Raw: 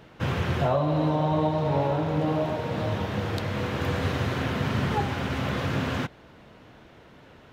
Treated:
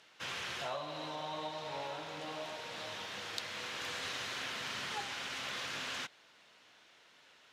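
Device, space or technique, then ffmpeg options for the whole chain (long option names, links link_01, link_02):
piezo pickup straight into a mixer: -af "lowpass=7000,aderivative,volume=5dB"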